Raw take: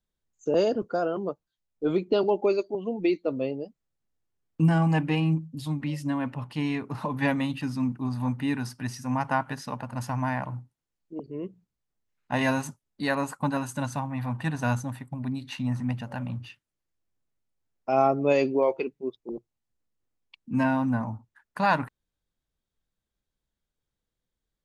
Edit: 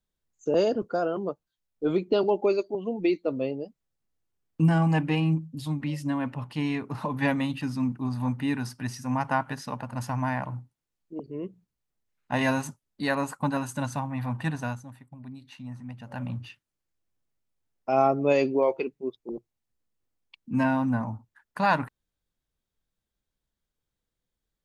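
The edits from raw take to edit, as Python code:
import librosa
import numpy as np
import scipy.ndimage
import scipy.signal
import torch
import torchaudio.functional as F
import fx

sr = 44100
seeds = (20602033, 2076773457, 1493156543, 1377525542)

y = fx.edit(x, sr, fx.fade_down_up(start_s=14.5, length_s=1.74, db=-11.0, fade_s=0.27), tone=tone)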